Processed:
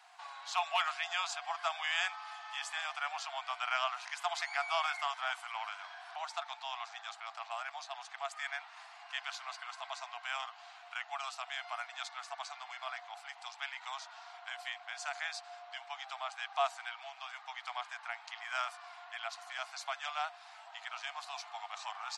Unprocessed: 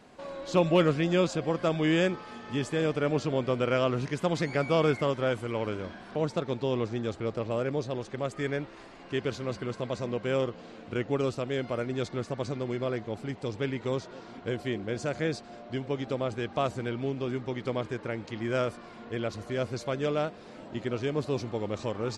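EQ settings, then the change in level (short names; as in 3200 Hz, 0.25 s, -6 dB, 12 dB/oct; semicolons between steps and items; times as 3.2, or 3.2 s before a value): Chebyshev high-pass 690 Hz, order 8; 0.0 dB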